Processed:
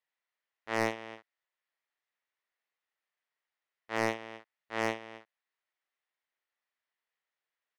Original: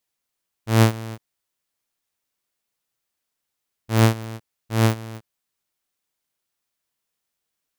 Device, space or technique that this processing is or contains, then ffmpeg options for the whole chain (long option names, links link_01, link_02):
megaphone: -filter_complex "[0:a]highpass=540,lowpass=2900,equalizer=frequency=1900:width_type=o:width=0.25:gain=8,asoftclip=type=hard:threshold=-11.5dB,asplit=2[link_01][link_02];[link_02]adelay=45,volume=-8dB[link_03];[link_01][link_03]amix=inputs=2:normalize=0,volume=-4.5dB"